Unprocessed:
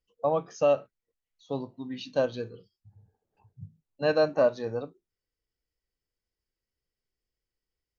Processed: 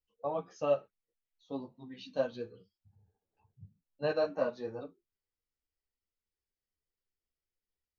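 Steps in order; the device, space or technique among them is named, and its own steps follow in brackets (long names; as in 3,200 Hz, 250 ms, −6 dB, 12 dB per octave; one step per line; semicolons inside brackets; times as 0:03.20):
string-machine ensemble chorus (string-ensemble chorus; low-pass filter 5,400 Hz 12 dB per octave)
level −4 dB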